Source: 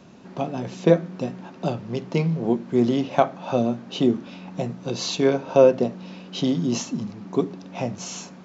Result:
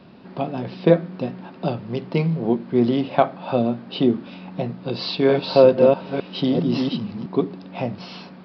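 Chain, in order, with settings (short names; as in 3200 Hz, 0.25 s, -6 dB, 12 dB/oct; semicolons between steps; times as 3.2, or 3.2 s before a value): 4.84–7.26 reverse delay 0.454 s, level -3 dB; downsampling 11025 Hz; gain +1.5 dB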